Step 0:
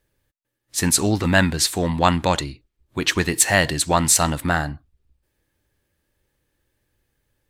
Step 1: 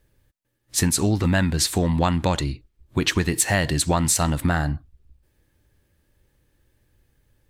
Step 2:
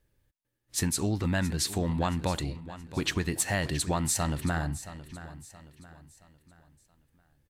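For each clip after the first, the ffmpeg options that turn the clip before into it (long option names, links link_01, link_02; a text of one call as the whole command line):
ffmpeg -i in.wav -af "lowshelf=frequency=250:gain=7.5,acompressor=threshold=-20dB:ratio=5,volume=2.5dB" out.wav
ffmpeg -i in.wav -af "aecho=1:1:673|1346|2019|2692:0.188|0.0753|0.0301|0.0121,volume=-8dB" out.wav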